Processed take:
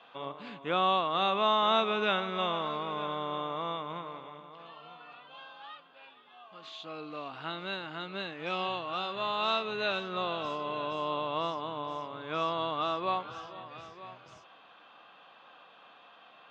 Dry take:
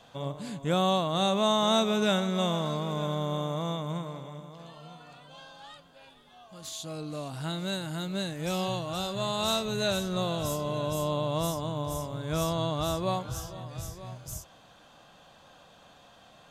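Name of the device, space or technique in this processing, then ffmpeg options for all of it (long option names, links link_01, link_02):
phone earpiece: -af "highpass=370,equalizer=frequency=590:width_type=q:width=4:gain=-5,equalizer=frequency=1200:width_type=q:width=4:gain=6,equalizer=frequency=2600:width_type=q:width=4:gain=5,lowpass=frequency=3500:width=0.5412,lowpass=frequency=3500:width=1.3066"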